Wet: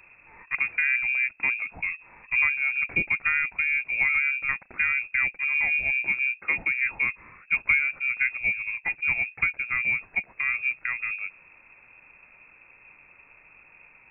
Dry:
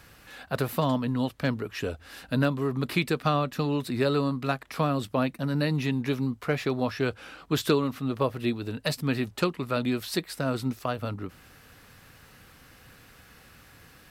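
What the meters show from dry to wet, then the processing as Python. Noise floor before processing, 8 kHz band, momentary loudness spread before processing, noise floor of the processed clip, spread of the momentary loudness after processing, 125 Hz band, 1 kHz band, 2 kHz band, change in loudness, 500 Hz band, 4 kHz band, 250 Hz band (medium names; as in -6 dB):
-54 dBFS, under -35 dB, 7 LU, -56 dBFS, 7 LU, -20.5 dB, -8.5 dB, +14.5 dB, +4.0 dB, -23.0 dB, under -15 dB, -22.5 dB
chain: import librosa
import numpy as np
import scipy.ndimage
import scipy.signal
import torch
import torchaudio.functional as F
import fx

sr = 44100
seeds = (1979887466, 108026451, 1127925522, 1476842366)

y = fx.peak_eq(x, sr, hz=1600.0, db=-8.5, octaves=1.5)
y = fx.freq_invert(y, sr, carrier_hz=2600)
y = y * 10.0 ** (2.0 / 20.0)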